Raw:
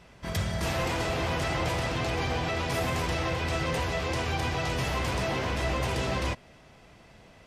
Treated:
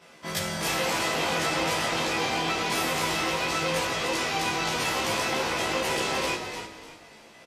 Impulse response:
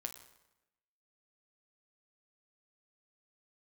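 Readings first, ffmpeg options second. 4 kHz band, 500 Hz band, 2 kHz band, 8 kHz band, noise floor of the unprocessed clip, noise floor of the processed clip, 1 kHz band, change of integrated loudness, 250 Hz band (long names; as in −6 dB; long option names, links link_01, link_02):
+6.5 dB, +1.5 dB, +4.5 dB, +8.5 dB, −54 dBFS, −51 dBFS, +4.0 dB, +3.0 dB, +1.0 dB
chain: -filter_complex "[0:a]highpass=240,asplit=2[link_01][link_02];[link_02]adelay=13,volume=-3.5dB[link_03];[link_01][link_03]amix=inputs=2:normalize=0,asplit=5[link_04][link_05][link_06][link_07][link_08];[link_05]adelay=298,afreqshift=-31,volume=-8dB[link_09];[link_06]adelay=596,afreqshift=-62,volume=-18.2dB[link_10];[link_07]adelay=894,afreqshift=-93,volume=-28.3dB[link_11];[link_08]adelay=1192,afreqshift=-124,volume=-38.5dB[link_12];[link_04][link_09][link_10][link_11][link_12]amix=inputs=5:normalize=0,asplit=2[link_13][link_14];[1:a]atrim=start_sample=2205,highshelf=frequency=3000:gain=11,adelay=19[link_15];[link_14][link_15]afir=irnorm=-1:irlink=0,volume=-2dB[link_16];[link_13][link_16]amix=inputs=2:normalize=0,aresample=32000,aresample=44100"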